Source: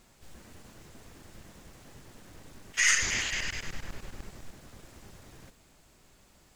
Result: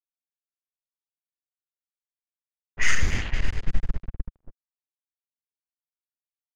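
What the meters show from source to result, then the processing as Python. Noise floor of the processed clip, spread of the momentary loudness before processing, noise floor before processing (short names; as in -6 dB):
under -85 dBFS, 22 LU, -62 dBFS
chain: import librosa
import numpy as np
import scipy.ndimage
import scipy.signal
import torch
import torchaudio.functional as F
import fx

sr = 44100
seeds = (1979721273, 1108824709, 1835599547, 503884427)

y = np.sign(x) * np.maximum(np.abs(x) - 10.0 ** (-37.0 / 20.0), 0.0)
y = fx.riaa(y, sr, side='playback')
y = fx.env_lowpass(y, sr, base_hz=620.0, full_db=-19.5)
y = y * librosa.db_to_amplitude(4.5)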